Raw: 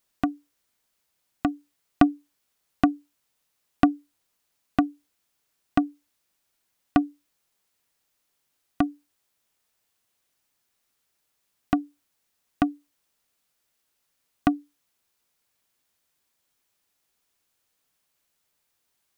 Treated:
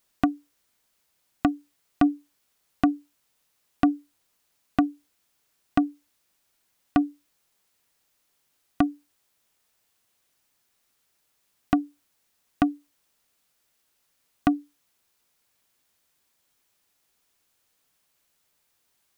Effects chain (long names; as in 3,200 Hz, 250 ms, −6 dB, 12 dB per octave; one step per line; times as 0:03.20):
brickwall limiter −10.5 dBFS, peak gain reduction 8.5 dB
level +3.5 dB